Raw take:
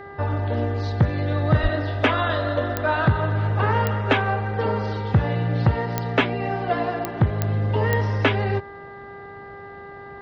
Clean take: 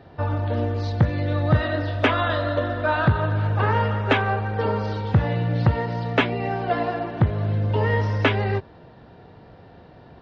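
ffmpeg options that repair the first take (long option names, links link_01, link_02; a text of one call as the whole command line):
ffmpeg -i in.wav -filter_complex "[0:a]adeclick=threshold=4,bandreject=frequency=399.4:width_type=h:width=4,bandreject=frequency=798.8:width_type=h:width=4,bandreject=frequency=1198.2:width_type=h:width=4,bandreject=frequency=1597.6:width_type=h:width=4,bandreject=frequency=1997:width_type=h:width=4,asplit=3[link_01][link_02][link_03];[link_01]afade=type=out:start_time=1.62:duration=0.02[link_04];[link_02]highpass=frequency=140:width=0.5412,highpass=frequency=140:width=1.3066,afade=type=in:start_time=1.62:duration=0.02,afade=type=out:start_time=1.74:duration=0.02[link_05];[link_03]afade=type=in:start_time=1.74:duration=0.02[link_06];[link_04][link_05][link_06]amix=inputs=3:normalize=0" out.wav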